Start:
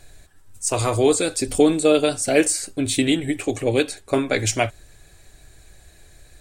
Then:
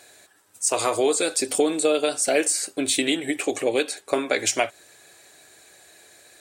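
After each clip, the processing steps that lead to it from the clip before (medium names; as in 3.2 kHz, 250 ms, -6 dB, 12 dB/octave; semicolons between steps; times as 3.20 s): high-pass 370 Hz 12 dB/octave; compression 2.5:1, threshold -23 dBFS, peak gain reduction 7.5 dB; trim +3.5 dB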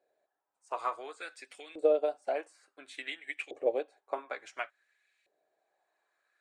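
LFO band-pass saw up 0.57 Hz 500–2600 Hz; upward expansion 1.5:1, over -49 dBFS; trim -1 dB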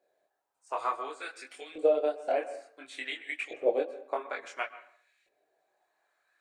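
chorus voices 4, 0.54 Hz, delay 23 ms, depth 4.3 ms; reverberation RT60 0.55 s, pre-delay 113 ms, DRR 14 dB; trim +6 dB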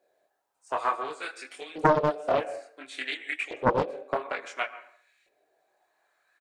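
delay 78 ms -22.5 dB; loudspeaker Doppler distortion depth 0.87 ms; trim +4 dB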